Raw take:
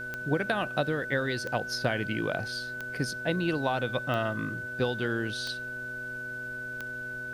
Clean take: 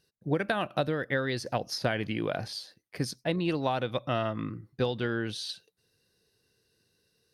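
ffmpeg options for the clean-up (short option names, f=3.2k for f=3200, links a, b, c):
-af "adeclick=t=4,bandreject=f=123.8:t=h:w=4,bandreject=f=247.6:t=h:w=4,bandreject=f=371.4:t=h:w=4,bandreject=f=495.2:t=h:w=4,bandreject=f=619:t=h:w=4,bandreject=f=1.5k:w=30,agate=range=-21dB:threshold=-29dB"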